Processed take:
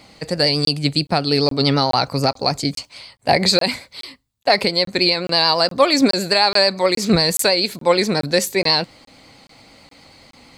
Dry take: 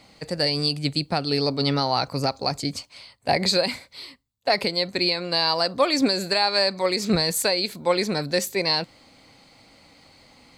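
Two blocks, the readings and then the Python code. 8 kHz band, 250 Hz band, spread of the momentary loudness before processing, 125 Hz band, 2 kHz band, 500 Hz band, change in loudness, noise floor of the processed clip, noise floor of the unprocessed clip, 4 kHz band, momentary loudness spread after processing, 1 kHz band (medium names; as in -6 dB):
+5.5 dB, +6.0 dB, 10 LU, +6.0 dB, +6.0 dB, +6.0 dB, +6.0 dB, -53 dBFS, -56 dBFS, +6.0 dB, 10 LU, +6.0 dB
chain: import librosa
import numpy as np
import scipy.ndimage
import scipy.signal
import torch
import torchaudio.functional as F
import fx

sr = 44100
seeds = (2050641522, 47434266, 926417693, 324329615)

y = fx.vibrato(x, sr, rate_hz=9.2, depth_cents=41.0)
y = fx.buffer_crackle(y, sr, first_s=0.65, period_s=0.42, block=1024, kind='zero')
y = y * librosa.db_to_amplitude(6.0)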